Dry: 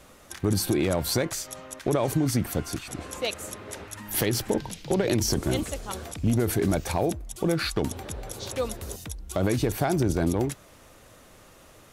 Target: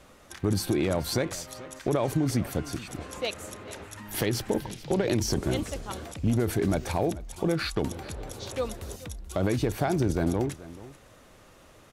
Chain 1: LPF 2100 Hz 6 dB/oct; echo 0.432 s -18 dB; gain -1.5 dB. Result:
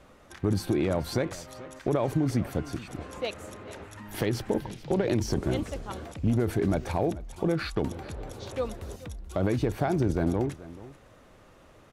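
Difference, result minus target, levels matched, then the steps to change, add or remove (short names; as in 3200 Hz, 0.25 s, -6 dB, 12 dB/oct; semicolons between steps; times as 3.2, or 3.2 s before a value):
8000 Hz band -7.0 dB
change: LPF 6300 Hz 6 dB/oct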